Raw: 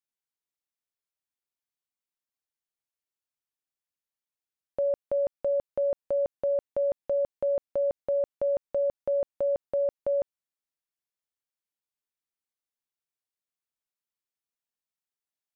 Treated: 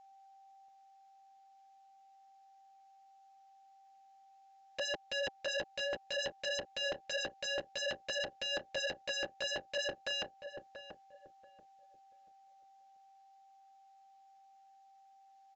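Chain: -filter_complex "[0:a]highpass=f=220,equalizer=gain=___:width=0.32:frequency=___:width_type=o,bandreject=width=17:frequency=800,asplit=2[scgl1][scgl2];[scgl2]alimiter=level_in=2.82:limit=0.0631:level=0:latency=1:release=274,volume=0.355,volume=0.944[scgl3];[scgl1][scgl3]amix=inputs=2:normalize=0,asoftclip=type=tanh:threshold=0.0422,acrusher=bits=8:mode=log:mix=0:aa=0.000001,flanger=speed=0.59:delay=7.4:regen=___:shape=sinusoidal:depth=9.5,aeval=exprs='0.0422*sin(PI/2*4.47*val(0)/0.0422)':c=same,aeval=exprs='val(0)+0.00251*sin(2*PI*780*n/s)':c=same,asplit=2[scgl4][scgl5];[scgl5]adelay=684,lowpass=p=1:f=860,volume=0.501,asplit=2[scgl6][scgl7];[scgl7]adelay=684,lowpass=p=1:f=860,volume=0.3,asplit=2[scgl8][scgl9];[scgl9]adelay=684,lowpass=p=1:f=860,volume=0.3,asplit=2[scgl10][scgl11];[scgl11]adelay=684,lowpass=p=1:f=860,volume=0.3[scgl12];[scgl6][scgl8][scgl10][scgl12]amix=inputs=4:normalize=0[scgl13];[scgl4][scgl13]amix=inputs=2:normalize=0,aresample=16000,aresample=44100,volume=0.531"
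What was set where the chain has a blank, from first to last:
-9.5, 380, -3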